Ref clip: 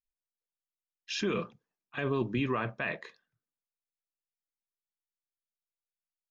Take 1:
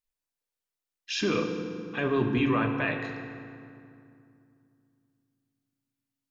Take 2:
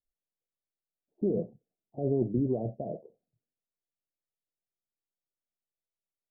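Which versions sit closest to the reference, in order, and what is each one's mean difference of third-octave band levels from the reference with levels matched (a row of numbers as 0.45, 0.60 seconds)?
1, 2; 5.5, 10.0 decibels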